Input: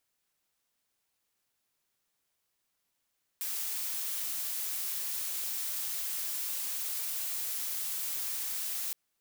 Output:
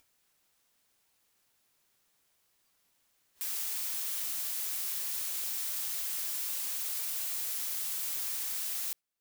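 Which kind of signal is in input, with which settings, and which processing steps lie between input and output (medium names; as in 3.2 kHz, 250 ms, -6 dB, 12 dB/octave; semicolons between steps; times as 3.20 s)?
noise blue, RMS -35 dBFS 5.52 s
upward compressor, threshold -49 dBFS; spectral noise reduction 9 dB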